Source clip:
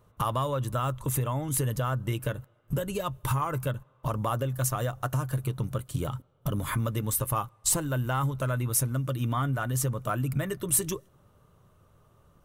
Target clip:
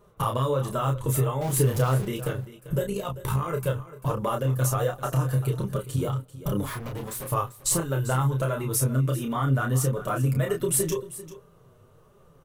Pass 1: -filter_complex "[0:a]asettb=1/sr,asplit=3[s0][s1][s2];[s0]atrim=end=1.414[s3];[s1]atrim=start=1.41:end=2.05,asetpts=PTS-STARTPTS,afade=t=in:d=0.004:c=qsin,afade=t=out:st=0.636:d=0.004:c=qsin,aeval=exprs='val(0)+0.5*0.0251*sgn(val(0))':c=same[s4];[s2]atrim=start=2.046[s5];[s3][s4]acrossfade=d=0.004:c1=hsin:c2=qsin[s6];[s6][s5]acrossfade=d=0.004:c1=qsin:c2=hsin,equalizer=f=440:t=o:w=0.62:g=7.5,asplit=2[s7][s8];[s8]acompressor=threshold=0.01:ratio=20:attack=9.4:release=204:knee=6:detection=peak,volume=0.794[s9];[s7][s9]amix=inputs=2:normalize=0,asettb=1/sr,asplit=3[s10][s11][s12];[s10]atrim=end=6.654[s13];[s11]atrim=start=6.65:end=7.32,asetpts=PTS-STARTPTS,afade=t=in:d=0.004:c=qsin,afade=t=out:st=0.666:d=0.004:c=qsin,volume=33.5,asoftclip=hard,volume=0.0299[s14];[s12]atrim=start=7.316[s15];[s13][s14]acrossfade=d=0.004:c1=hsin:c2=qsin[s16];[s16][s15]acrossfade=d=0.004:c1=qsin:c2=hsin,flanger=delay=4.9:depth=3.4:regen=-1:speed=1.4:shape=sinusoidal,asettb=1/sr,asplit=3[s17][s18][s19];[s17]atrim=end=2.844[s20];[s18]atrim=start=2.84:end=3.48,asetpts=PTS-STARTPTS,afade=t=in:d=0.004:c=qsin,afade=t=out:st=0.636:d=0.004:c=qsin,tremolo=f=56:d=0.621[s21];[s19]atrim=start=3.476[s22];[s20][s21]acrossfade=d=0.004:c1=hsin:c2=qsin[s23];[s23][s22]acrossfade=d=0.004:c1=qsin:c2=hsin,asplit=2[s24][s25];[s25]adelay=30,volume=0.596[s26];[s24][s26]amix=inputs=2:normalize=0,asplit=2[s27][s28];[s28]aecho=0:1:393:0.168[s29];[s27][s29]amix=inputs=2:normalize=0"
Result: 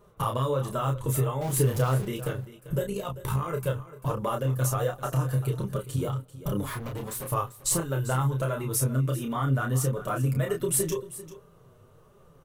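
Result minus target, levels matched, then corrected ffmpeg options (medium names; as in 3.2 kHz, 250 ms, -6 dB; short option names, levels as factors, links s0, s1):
compression: peak gain reduction +10.5 dB
-filter_complex "[0:a]asettb=1/sr,asplit=3[s0][s1][s2];[s0]atrim=end=1.414[s3];[s1]atrim=start=1.41:end=2.05,asetpts=PTS-STARTPTS,afade=t=in:d=0.004:c=qsin,afade=t=out:st=0.636:d=0.004:c=qsin,aeval=exprs='val(0)+0.5*0.0251*sgn(val(0))':c=same[s4];[s2]atrim=start=2.046[s5];[s3][s4]acrossfade=d=0.004:c1=hsin:c2=qsin[s6];[s6][s5]acrossfade=d=0.004:c1=qsin:c2=hsin,equalizer=f=440:t=o:w=0.62:g=7.5,asplit=2[s7][s8];[s8]acompressor=threshold=0.0355:ratio=20:attack=9.4:release=204:knee=6:detection=peak,volume=0.794[s9];[s7][s9]amix=inputs=2:normalize=0,asettb=1/sr,asplit=3[s10][s11][s12];[s10]atrim=end=6.654[s13];[s11]atrim=start=6.65:end=7.32,asetpts=PTS-STARTPTS,afade=t=in:d=0.004:c=qsin,afade=t=out:st=0.666:d=0.004:c=qsin,volume=33.5,asoftclip=hard,volume=0.0299[s14];[s12]atrim=start=7.316[s15];[s13][s14]acrossfade=d=0.004:c1=hsin:c2=qsin[s16];[s16][s15]acrossfade=d=0.004:c1=qsin:c2=hsin,flanger=delay=4.9:depth=3.4:regen=-1:speed=1.4:shape=sinusoidal,asettb=1/sr,asplit=3[s17][s18][s19];[s17]atrim=end=2.844[s20];[s18]atrim=start=2.84:end=3.48,asetpts=PTS-STARTPTS,afade=t=in:d=0.004:c=qsin,afade=t=out:st=0.636:d=0.004:c=qsin,tremolo=f=56:d=0.621[s21];[s19]atrim=start=3.476[s22];[s20][s21]acrossfade=d=0.004:c1=hsin:c2=qsin[s23];[s23][s22]acrossfade=d=0.004:c1=qsin:c2=hsin,asplit=2[s24][s25];[s25]adelay=30,volume=0.596[s26];[s24][s26]amix=inputs=2:normalize=0,asplit=2[s27][s28];[s28]aecho=0:1:393:0.168[s29];[s27][s29]amix=inputs=2:normalize=0"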